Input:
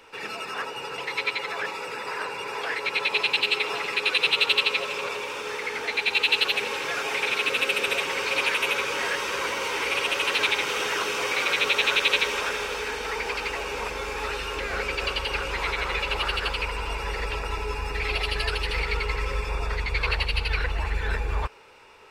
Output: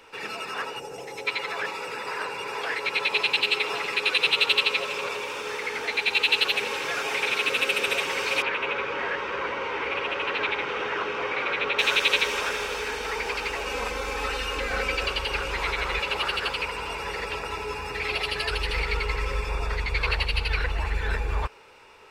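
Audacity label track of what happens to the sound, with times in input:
0.790000	1.270000	gain on a spectral selection 870–5,100 Hz −12 dB
8.420000	11.790000	low-pass filter 2,200 Hz
13.660000	15.030000	comb filter 3.9 ms, depth 61%
16.000000	18.510000	high-pass filter 100 Hz

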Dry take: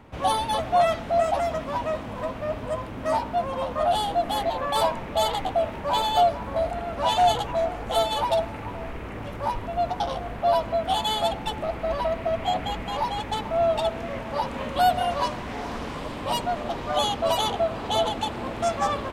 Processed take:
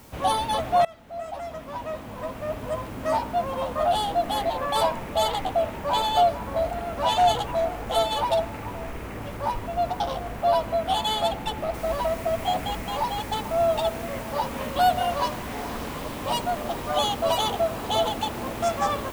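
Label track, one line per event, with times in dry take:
0.850000	2.820000	fade in, from −23 dB
11.740000	11.740000	noise floor change −54 dB −46 dB

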